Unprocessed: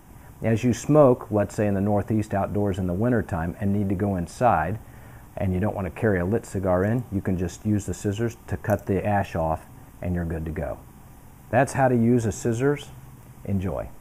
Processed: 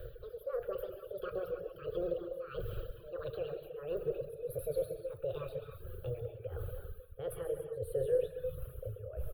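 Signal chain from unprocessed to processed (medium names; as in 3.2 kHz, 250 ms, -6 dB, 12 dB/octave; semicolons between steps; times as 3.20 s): gliding tape speed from 195% -> 105%; reverse; compression 8:1, threshold -33 dBFS, peak gain reduction 21 dB; reverse; static phaser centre 1.4 kHz, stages 8; peak limiter -34 dBFS, peak gain reduction 8.5 dB; bass shelf 130 Hz +9 dB; tremolo 1.5 Hz, depth 85%; FFT filter 110 Hz 0 dB, 210 Hz -22 dB, 510 Hz +14 dB, 750 Hz -16 dB, 1.4 kHz -4 dB, 1.9 kHz -8 dB, 4.1 kHz -7 dB, 7.2 kHz -20 dB, 10 kHz +1 dB; on a send: feedback delay 136 ms, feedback 43%, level -11 dB; on the sum: gated-style reverb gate 330 ms flat, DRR 1.5 dB; reverb removal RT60 0.9 s; trim +3 dB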